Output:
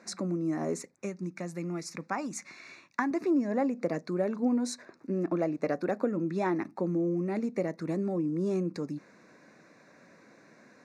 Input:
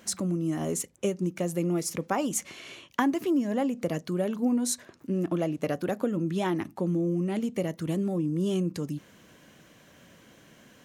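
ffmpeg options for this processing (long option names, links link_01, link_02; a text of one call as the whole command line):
ffmpeg -i in.wav -filter_complex "[0:a]highpass=210,lowpass=4500,asettb=1/sr,asplit=3[link_01][link_02][link_03];[link_01]atrim=end=0.954[link_04];[link_02]atrim=start=0.95:end=3.11,asetpts=PTS-STARTPTS,afade=type=in:duration=0.004:curve=qsin,afade=type=out:start_time=2.156:duration=0.004:curve=qsin,equalizer=frequency=470:width=0.97:gain=-11[link_05];[link_03]atrim=start=3.106[link_06];[link_04][link_05]acrossfade=duration=0.004:curve1=hsin:curve2=qsin[link_07];[link_07][link_06]acrossfade=duration=0.004:curve1=qsin:curve2=hsin,asuperstop=centerf=3100:order=4:qfactor=2.2" out.wav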